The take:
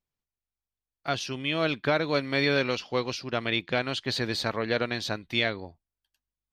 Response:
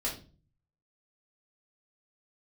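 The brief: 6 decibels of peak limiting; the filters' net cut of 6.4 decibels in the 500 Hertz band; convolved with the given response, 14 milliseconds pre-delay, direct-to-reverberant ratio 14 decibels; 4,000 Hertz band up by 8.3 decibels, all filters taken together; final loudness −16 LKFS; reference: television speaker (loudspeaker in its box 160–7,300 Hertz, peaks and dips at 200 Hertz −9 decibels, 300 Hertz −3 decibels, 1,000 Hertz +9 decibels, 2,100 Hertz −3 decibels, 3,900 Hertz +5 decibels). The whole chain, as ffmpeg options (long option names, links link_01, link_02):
-filter_complex "[0:a]equalizer=frequency=500:width_type=o:gain=-8,equalizer=frequency=4000:width_type=o:gain=6.5,alimiter=limit=-15.5dB:level=0:latency=1,asplit=2[link_01][link_02];[1:a]atrim=start_sample=2205,adelay=14[link_03];[link_02][link_03]afir=irnorm=-1:irlink=0,volume=-18.5dB[link_04];[link_01][link_04]amix=inputs=2:normalize=0,highpass=frequency=160:width=0.5412,highpass=frequency=160:width=1.3066,equalizer=frequency=200:width_type=q:width=4:gain=-9,equalizer=frequency=300:width_type=q:width=4:gain=-3,equalizer=frequency=1000:width_type=q:width=4:gain=9,equalizer=frequency=2100:width_type=q:width=4:gain=-3,equalizer=frequency=3900:width_type=q:width=4:gain=5,lowpass=frequency=7300:width=0.5412,lowpass=frequency=7300:width=1.3066,volume=10dB"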